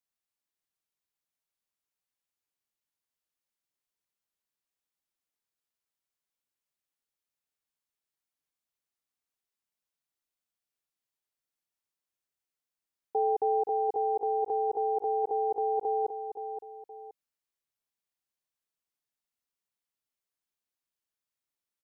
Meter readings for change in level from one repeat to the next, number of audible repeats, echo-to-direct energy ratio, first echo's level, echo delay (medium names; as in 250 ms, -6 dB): -10.0 dB, 2, -8.5 dB, -9.0 dB, 522 ms